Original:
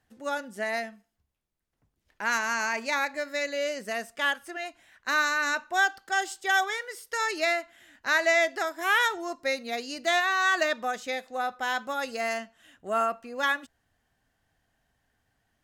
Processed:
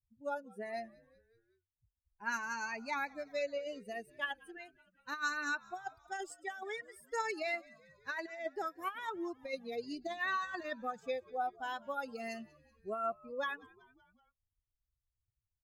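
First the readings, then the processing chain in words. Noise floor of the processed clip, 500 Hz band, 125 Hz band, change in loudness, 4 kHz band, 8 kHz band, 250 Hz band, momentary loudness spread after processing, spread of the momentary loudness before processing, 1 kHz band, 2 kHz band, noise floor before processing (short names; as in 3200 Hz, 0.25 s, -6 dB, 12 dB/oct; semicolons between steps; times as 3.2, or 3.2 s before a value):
under -85 dBFS, -9.5 dB, n/a, -12.0 dB, -16.0 dB, -15.5 dB, -7.0 dB, 10 LU, 10 LU, -10.5 dB, -14.0 dB, -78 dBFS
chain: per-bin expansion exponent 2; high shelf 2100 Hz -8 dB; negative-ratio compressor -33 dBFS, ratio -0.5; flange 0.65 Hz, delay 0.4 ms, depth 2.7 ms, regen +30%; frequency-shifting echo 0.189 s, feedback 62%, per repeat -78 Hz, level -23.5 dB; gain +1 dB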